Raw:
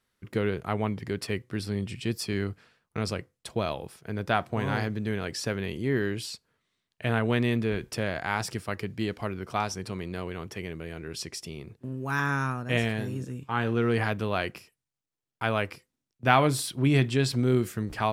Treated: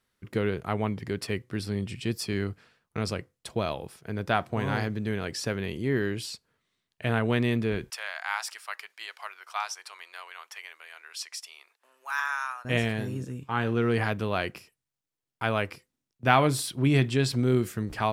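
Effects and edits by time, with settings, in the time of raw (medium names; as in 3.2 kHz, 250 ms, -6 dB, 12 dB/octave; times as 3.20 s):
7.90–12.65 s: high-pass 890 Hz 24 dB/octave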